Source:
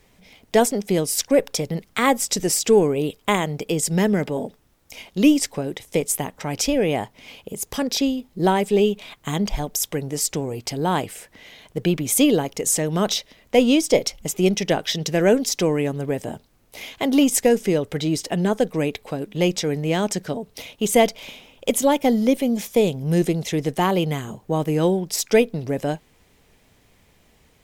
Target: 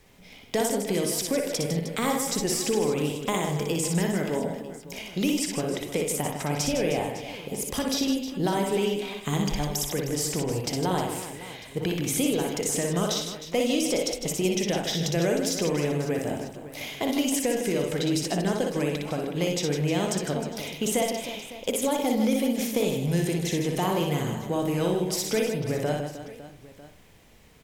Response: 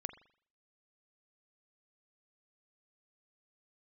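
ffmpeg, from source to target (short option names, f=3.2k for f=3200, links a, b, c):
-filter_complex "[0:a]acrossover=split=1000|4300[a][b][c];[a]acompressor=threshold=-25dB:ratio=4[d];[b]acompressor=threshold=-36dB:ratio=4[e];[c]acompressor=threshold=-30dB:ratio=4[f];[d][e][f]amix=inputs=3:normalize=0,asplit=2[g][h];[h]asoftclip=type=tanh:threshold=-25dB,volume=-11.5dB[i];[g][i]amix=inputs=2:normalize=0,aecho=1:1:60|156|309.6|555.4|948.6:0.631|0.398|0.251|0.158|0.1[j];[1:a]atrim=start_sample=2205[k];[j][k]afir=irnorm=-1:irlink=0"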